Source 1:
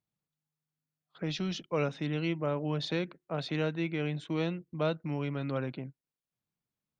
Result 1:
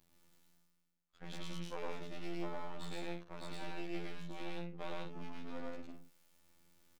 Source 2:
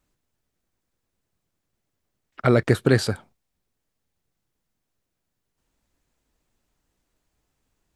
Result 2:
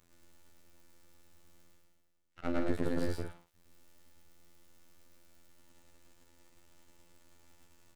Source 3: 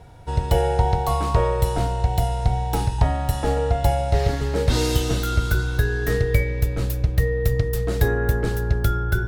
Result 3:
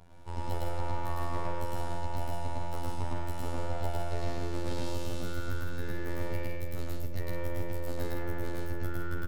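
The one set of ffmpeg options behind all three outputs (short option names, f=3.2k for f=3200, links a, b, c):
-filter_complex "[0:a]acrossover=split=200|970[a][b][c];[a]acompressor=threshold=-19dB:ratio=4[d];[b]acompressor=threshold=-25dB:ratio=4[e];[c]acompressor=threshold=-37dB:ratio=4[f];[d][e][f]amix=inputs=3:normalize=0,aeval=exprs='max(val(0),0)':c=same,areverse,acompressor=mode=upward:threshold=-39dB:ratio=2.5,areverse,afftfilt=real='hypot(re,im)*cos(PI*b)':imag='0':win_size=2048:overlap=0.75,aecho=1:1:107.9|160.3:1|0.501,volume=-5.5dB"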